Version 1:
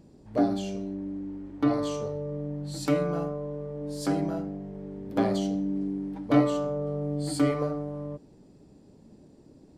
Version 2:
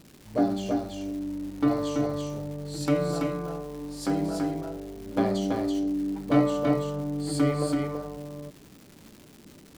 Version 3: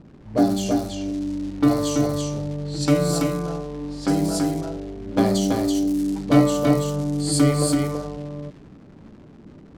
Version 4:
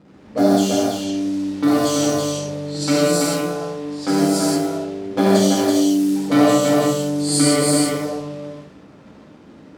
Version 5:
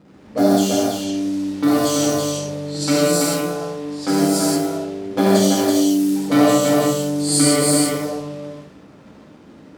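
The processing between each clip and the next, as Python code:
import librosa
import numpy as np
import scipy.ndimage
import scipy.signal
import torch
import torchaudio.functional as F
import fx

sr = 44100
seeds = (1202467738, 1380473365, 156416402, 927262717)

y1 = x + 10.0 ** (-3.5 / 20.0) * np.pad(x, (int(332 * sr / 1000.0), 0))[:len(x)]
y1 = fx.dmg_crackle(y1, sr, seeds[0], per_s=430.0, level_db=-40.0)
y2 = fx.env_lowpass(y1, sr, base_hz=1100.0, full_db=-24.5)
y2 = fx.bass_treble(y2, sr, bass_db=4, treble_db=11)
y2 = y2 * librosa.db_to_amplitude(4.5)
y3 = fx.highpass(y2, sr, hz=360.0, slope=6)
y3 = fx.rev_gated(y3, sr, seeds[1], gate_ms=200, shape='flat', drr_db=-6.0)
y4 = fx.high_shelf(y3, sr, hz=11000.0, db=7.5)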